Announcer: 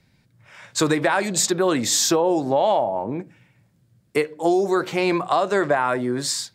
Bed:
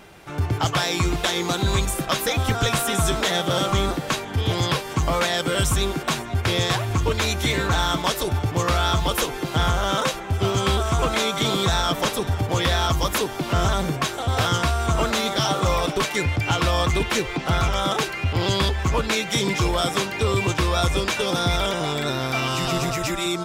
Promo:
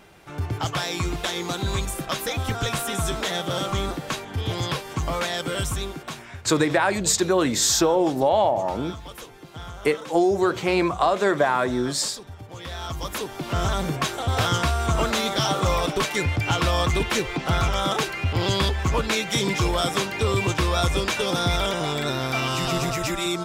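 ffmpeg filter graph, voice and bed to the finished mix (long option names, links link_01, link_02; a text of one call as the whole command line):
ffmpeg -i stem1.wav -i stem2.wav -filter_complex "[0:a]adelay=5700,volume=-0.5dB[link_01];[1:a]volume=11.5dB,afade=type=out:start_time=5.51:duration=0.87:silence=0.237137,afade=type=in:start_time=12.58:duration=1.45:silence=0.158489[link_02];[link_01][link_02]amix=inputs=2:normalize=0" out.wav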